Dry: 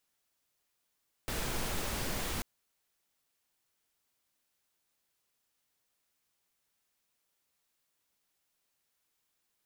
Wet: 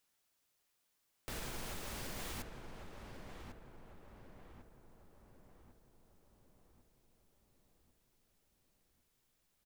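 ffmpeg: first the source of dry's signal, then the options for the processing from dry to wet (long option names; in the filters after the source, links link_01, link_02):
-f lavfi -i "anoisesrc=color=pink:amplitude=0.0912:duration=1.14:sample_rate=44100:seed=1"
-filter_complex "[0:a]alimiter=level_in=10dB:limit=-24dB:level=0:latency=1:release=391,volume=-10dB,asplit=2[link_01][link_02];[link_02]adelay=1099,lowpass=frequency=1600:poles=1,volume=-5dB,asplit=2[link_03][link_04];[link_04]adelay=1099,lowpass=frequency=1600:poles=1,volume=0.53,asplit=2[link_05][link_06];[link_06]adelay=1099,lowpass=frequency=1600:poles=1,volume=0.53,asplit=2[link_07][link_08];[link_08]adelay=1099,lowpass=frequency=1600:poles=1,volume=0.53,asplit=2[link_09][link_10];[link_10]adelay=1099,lowpass=frequency=1600:poles=1,volume=0.53,asplit=2[link_11][link_12];[link_12]adelay=1099,lowpass=frequency=1600:poles=1,volume=0.53,asplit=2[link_13][link_14];[link_14]adelay=1099,lowpass=frequency=1600:poles=1,volume=0.53[link_15];[link_03][link_05][link_07][link_09][link_11][link_13][link_15]amix=inputs=7:normalize=0[link_16];[link_01][link_16]amix=inputs=2:normalize=0"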